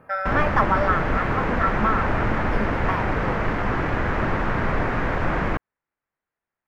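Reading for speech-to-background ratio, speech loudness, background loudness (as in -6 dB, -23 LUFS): -1.5 dB, -26.0 LUFS, -24.5 LUFS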